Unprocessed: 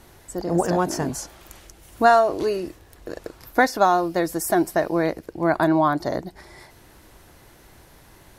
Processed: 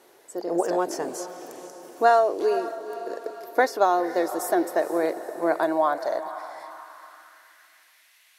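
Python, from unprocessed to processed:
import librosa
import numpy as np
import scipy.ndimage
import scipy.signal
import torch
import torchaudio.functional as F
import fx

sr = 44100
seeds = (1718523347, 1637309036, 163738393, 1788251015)

y = fx.echo_diffused(x, sr, ms=487, feedback_pct=53, wet_db=-12.5)
y = fx.filter_sweep_highpass(y, sr, from_hz=420.0, to_hz=2400.0, start_s=5.5, end_s=8.15, q=2.0)
y = F.gain(torch.from_numpy(y), -5.5).numpy()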